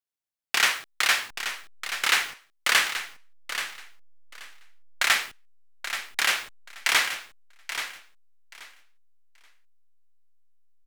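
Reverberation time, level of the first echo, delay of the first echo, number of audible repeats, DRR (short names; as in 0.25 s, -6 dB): none, -10.0 dB, 0.83 s, 2, none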